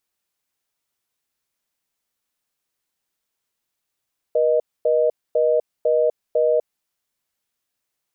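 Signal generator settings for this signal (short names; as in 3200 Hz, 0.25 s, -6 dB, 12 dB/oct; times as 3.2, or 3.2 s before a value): call progress tone reorder tone, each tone -17.5 dBFS 2.39 s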